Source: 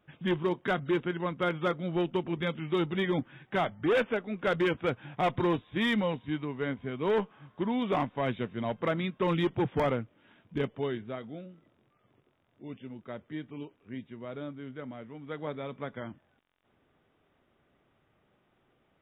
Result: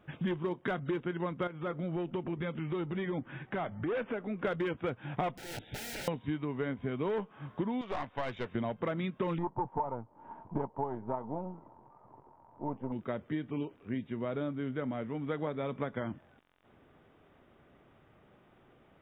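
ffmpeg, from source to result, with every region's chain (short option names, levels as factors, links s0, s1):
-filter_complex "[0:a]asettb=1/sr,asplit=3[s0][s1][s2];[s0]atrim=end=1.474[s3];[s1]atrim=start=1.47:end=4.45,asetpts=PTS-STARTPTS,afade=t=in:d=0.004:c=qsin,afade=t=out:st=2.976:d=0.004:c=qsin,lowpass=3200,acompressor=threshold=0.00631:ratio=2.5:attack=3.2:release=140:knee=1:detection=peak[s4];[s2]atrim=start=4.446[s5];[s3][s4]acrossfade=d=0.004:c1=hsin:c2=qsin[s6];[s6][s5]acrossfade=d=0.004:c1=qsin:c2=hsin,asettb=1/sr,asplit=3[s7][s8][s9];[s7]atrim=end=5.374[s10];[s8]atrim=start=5.37:end=6.08,asetpts=PTS-STARTPTS,afade=t=in:d=0.004:c=qsin,afade=t=out:st=0.706:d=0.004:c=qsin,aeval=exprs='(mod(59.6*val(0)+1,2)-1)/59.6':c=same,acompressor=threshold=0.00631:ratio=4:attack=3.2:release=140:knee=1:detection=peak,asuperstop=centerf=1100:order=8:qfactor=2.6[s11];[s9]atrim=start=6.076[s12];[s10][s11]acrossfade=d=0.004:c1=hsin:c2=qsin[s13];[s13][s12]acrossfade=d=0.004:c1=qsin:c2=hsin,asettb=1/sr,asplit=3[s14][s15][s16];[s14]atrim=end=7.814[s17];[s15]atrim=start=7.81:end=8.55,asetpts=PTS-STARTPTS,afade=t=in:d=0.004:c=qsin,afade=t=out:st=0.736:d=0.004:c=qsin,equalizer=f=200:t=o:w=1.9:g=-11.5,aeval=exprs='(tanh(35.5*val(0)+0.7)-tanh(0.7))/35.5':c=same[s18];[s16]atrim=start=8.546[s19];[s17][s18]acrossfade=d=0.004:c1=hsin:c2=qsin[s20];[s20][s19]acrossfade=d=0.004:c1=qsin:c2=hsin,asettb=1/sr,asplit=3[s21][s22][s23];[s21]atrim=end=9.384[s24];[s22]atrim=start=9.38:end=12.92,asetpts=PTS-STARTPTS,afade=t=in:d=0.004:c=qsin,afade=t=out:st=3.536:d=0.004:c=qsin,aeval=exprs='if(lt(val(0),0),0.447*val(0),val(0))':c=same,lowpass=f=920:t=q:w=11[s25];[s23]atrim=start=12.916[s26];[s24][s25]acrossfade=d=0.004:c1=hsin:c2=qsin[s27];[s27][s26]acrossfade=d=0.004:c1=qsin:c2=hsin,highshelf=f=2800:g=-7.5,acompressor=threshold=0.0112:ratio=12,volume=2.66"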